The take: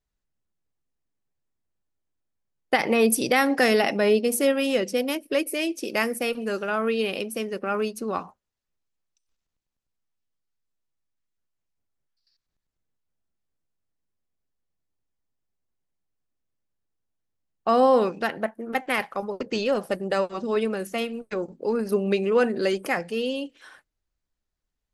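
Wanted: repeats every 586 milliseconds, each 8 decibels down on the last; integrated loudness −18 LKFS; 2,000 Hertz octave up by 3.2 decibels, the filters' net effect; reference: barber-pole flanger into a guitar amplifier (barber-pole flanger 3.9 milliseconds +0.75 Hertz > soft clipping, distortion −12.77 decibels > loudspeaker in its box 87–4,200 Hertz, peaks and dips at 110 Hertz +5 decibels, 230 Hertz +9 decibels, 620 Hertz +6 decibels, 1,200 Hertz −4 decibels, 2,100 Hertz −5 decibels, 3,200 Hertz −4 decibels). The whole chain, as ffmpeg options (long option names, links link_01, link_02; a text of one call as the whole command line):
ffmpeg -i in.wav -filter_complex "[0:a]equalizer=frequency=2000:width_type=o:gain=7.5,aecho=1:1:586|1172|1758|2344|2930:0.398|0.159|0.0637|0.0255|0.0102,asplit=2[link_01][link_02];[link_02]adelay=3.9,afreqshift=0.75[link_03];[link_01][link_03]amix=inputs=2:normalize=1,asoftclip=threshold=-18.5dB,highpass=87,equalizer=frequency=110:width_type=q:width=4:gain=5,equalizer=frequency=230:width_type=q:width=4:gain=9,equalizer=frequency=620:width_type=q:width=4:gain=6,equalizer=frequency=1200:width_type=q:width=4:gain=-4,equalizer=frequency=2100:width_type=q:width=4:gain=-5,equalizer=frequency=3200:width_type=q:width=4:gain=-4,lowpass=frequency=4200:width=0.5412,lowpass=frequency=4200:width=1.3066,volume=8dB" out.wav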